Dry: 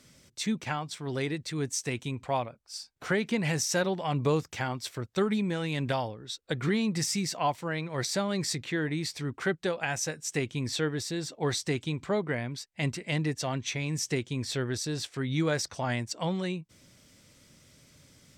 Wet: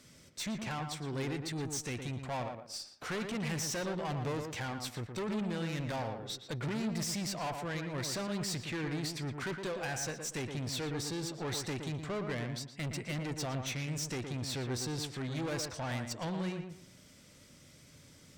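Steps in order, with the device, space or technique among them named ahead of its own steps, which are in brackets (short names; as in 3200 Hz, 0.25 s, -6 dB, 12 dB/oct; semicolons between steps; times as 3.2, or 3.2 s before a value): rockabilly slapback (tube stage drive 34 dB, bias 0.25; tape echo 0.116 s, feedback 30%, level -3.5 dB, low-pass 1700 Hz)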